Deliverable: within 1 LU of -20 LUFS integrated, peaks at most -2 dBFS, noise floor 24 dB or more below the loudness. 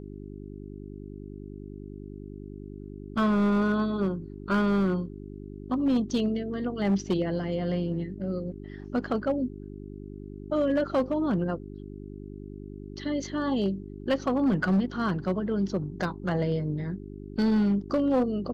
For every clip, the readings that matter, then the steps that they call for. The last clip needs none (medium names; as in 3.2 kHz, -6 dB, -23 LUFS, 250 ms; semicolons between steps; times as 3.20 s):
clipped samples 1.3%; clipping level -19.0 dBFS; hum 50 Hz; highest harmonic 400 Hz; hum level -39 dBFS; loudness -28.0 LUFS; peak level -19.0 dBFS; loudness target -20.0 LUFS
-> clip repair -19 dBFS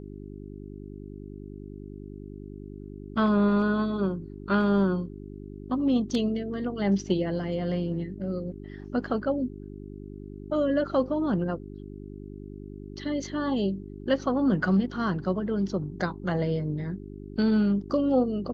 clipped samples 0.0%; hum 50 Hz; highest harmonic 400 Hz; hum level -39 dBFS
-> de-hum 50 Hz, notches 8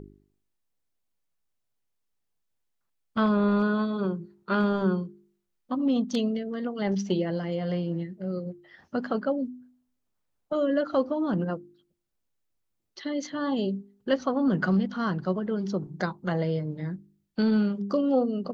hum not found; loudness -28.0 LUFS; peak level -12.5 dBFS; loudness target -20.0 LUFS
-> trim +8 dB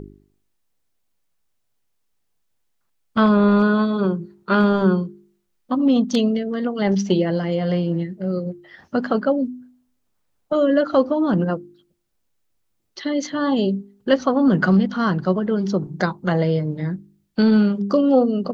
loudness -20.0 LUFS; peak level -4.5 dBFS; noise floor -70 dBFS